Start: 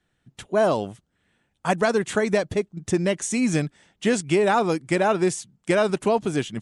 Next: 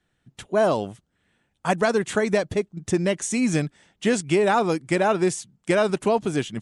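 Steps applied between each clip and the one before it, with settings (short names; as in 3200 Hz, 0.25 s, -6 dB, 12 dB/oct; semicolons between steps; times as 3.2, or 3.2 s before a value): nothing audible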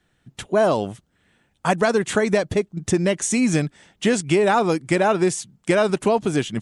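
compressor 1.5:1, threshold -27 dBFS, peak gain reduction 4.5 dB; gain +6 dB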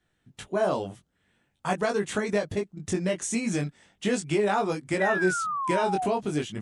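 chorus 0.45 Hz, delay 19.5 ms, depth 2.4 ms; painted sound fall, 5–6.07, 700–2000 Hz -25 dBFS; gain -4.5 dB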